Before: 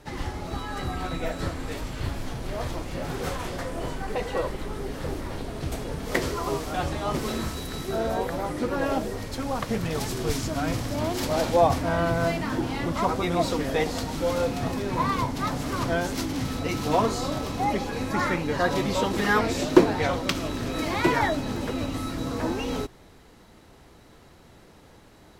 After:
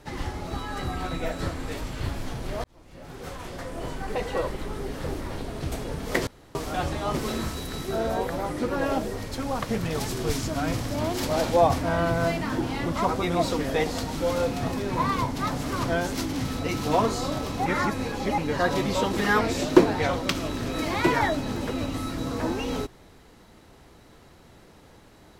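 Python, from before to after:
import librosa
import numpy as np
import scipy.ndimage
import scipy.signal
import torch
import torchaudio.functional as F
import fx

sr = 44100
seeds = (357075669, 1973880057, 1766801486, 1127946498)

y = fx.edit(x, sr, fx.fade_in_span(start_s=2.64, length_s=1.52),
    fx.room_tone_fill(start_s=6.27, length_s=0.28),
    fx.reverse_span(start_s=17.66, length_s=0.72), tone=tone)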